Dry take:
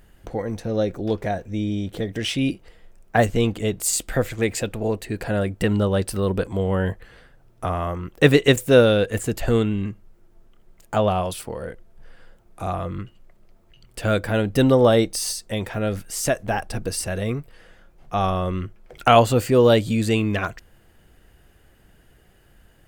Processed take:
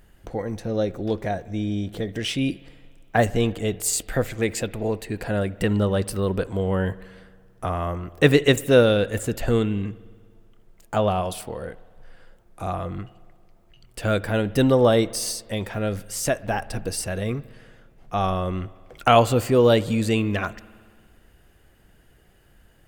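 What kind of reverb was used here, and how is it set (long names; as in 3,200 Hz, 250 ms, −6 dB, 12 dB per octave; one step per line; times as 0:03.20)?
spring reverb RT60 1.8 s, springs 58 ms, chirp 25 ms, DRR 19 dB
level −1.5 dB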